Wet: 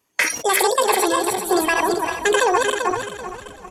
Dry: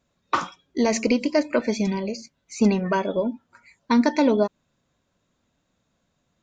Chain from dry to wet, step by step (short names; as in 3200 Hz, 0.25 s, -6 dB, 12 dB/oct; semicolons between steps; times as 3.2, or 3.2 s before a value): regenerating reverse delay 0.336 s, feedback 59%, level -4 dB; tilt +2 dB/oct; notch 2300 Hz, Q 9; in parallel at +2.5 dB: level quantiser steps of 14 dB; on the sum: speed mistake 45 rpm record played at 78 rpm; on a send: frequency-shifting echo 0.334 s, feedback 64%, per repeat -150 Hz, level -23 dB; on the sum: sustainer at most 82 dB/s